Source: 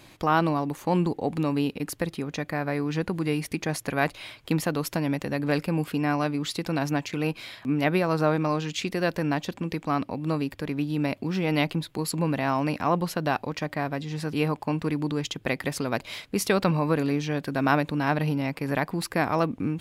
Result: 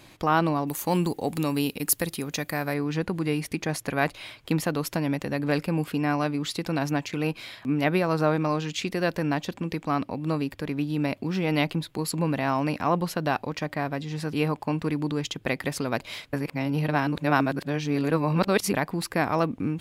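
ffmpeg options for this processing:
ffmpeg -i in.wav -filter_complex "[0:a]asettb=1/sr,asplit=3[link_01][link_02][link_03];[link_01]atrim=end=0.674[link_04];[link_02]atrim=start=0.67:end=2.74,asetpts=PTS-STARTPTS,afade=type=in:duration=0.004:curve=qsin,afade=type=out:start_time=2.066:duration=0.004:curve=qsin,aemphasis=mode=production:type=75fm[link_05];[link_03]atrim=start=2.736[link_06];[link_04][link_05]acrossfade=duration=0.004:curve1=hsin:curve2=qsin[link_07];[link_07][link_06]acrossfade=duration=0.004:curve1=qsin:curve2=hsin,asplit=3[link_08][link_09][link_10];[link_08]atrim=end=16.332[link_11];[link_09]atrim=start=16.328:end=18.742,asetpts=PTS-STARTPTS,areverse[link_12];[link_10]atrim=start=18.738[link_13];[link_11][link_12]acrossfade=duration=0.004:curve1=hsin:curve2=hsin[link_14];[link_14][link_13]acrossfade=duration=0.004:curve1=hsin:curve2=hsin" out.wav

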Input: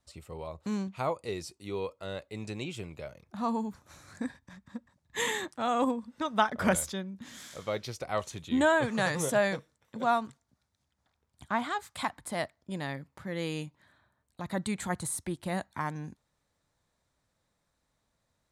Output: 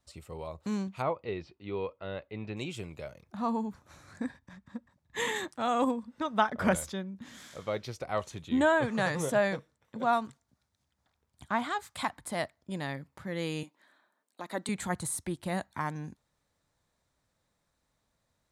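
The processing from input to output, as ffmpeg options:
ffmpeg -i in.wav -filter_complex "[0:a]asettb=1/sr,asplit=3[link_01][link_02][link_03];[link_01]atrim=end=1.024[link_04];[link_02]atrim=start=1.02:end=2.57,asetpts=PTS-STARTPTS,afade=type=in:duration=0.004:curve=qsin,afade=type=out:start_time=1.546:duration=0.004:curve=qsin,lowpass=frequency=3300:width=0.5412,lowpass=frequency=3300:width=1.3066[link_05];[link_03]atrim=start=2.566[link_06];[link_04][link_05]acrossfade=duration=0.004:curve1=hsin:curve2=qsin[link_07];[link_07][link_06]acrossfade=duration=0.004:curve1=qsin:curve2=hsin,asettb=1/sr,asplit=3[link_08][link_09][link_10];[link_08]atrim=end=3.354[link_11];[link_09]atrim=start=3.35:end=5.36,asetpts=PTS-STARTPTS,afade=type=in:duration=0.004:curve=qsin,afade=type=out:start_time=2.006:duration=0.004:curve=qsin,highshelf=frequency=4400:gain=-6.5[link_12];[link_10]atrim=start=5.356[link_13];[link_11][link_12]acrossfade=duration=0.004:curve1=hsin:curve2=qsin[link_14];[link_14][link_13]acrossfade=duration=0.004:curve1=qsin:curve2=hsin,asettb=1/sr,asplit=3[link_15][link_16][link_17];[link_15]atrim=end=6.034[link_18];[link_16]atrim=start=6.03:end=10.13,asetpts=PTS-STARTPTS,afade=type=in:duration=0.004:curve=qsin,afade=type=out:start_time=4.096:duration=0.004:curve=qsin,highshelf=frequency=3500:gain=-6[link_19];[link_17]atrim=start=10.126[link_20];[link_18][link_19]acrossfade=duration=0.004:curve1=hsin:curve2=qsin[link_21];[link_21][link_20]acrossfade=duration=0.004:curve1=qsin:curve2=hsin,asettb=1/sr,asplit=3[link_22][link_23][link_24];[link_22]atrim=end=13.634[link_25];[link_23]atrim=start=13.63:end=14.69,asetpts=PTS-STARTPTS,afade=type=in:duration=0.004:curve=qsin,afade=type=out:start_time=1.056:duration=0.004:curve=qsin,highpass=frequency=250:width=0.5412,highpass=frequency=250:width=1.3066[link_26];[link_24]atrim=start=14.686[link_27];[link_25][link_26]acrossfade=duration=0.004:curve1=hsin:curve2=qsin[link_28];[link_28][link_27]acrossfade=duration=0.004:curve1=qsin:curve2=hsin" out.wav

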